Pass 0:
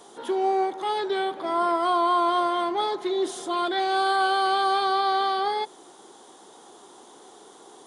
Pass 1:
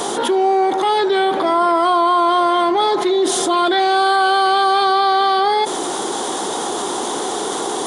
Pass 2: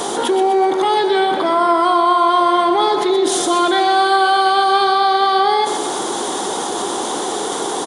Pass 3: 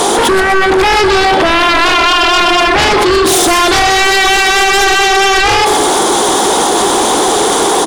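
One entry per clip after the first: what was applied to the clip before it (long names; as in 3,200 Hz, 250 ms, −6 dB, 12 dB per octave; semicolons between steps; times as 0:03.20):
envelope flattener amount 70%; level +6.5 dB
repeating echo 124 ms, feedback 50%, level −8.5 dB
mains-hum notches 50/100/150/200/250/300/350 Hz; sine wavefolder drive 13 dB, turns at −2.5 dBFS; level −3.5 dB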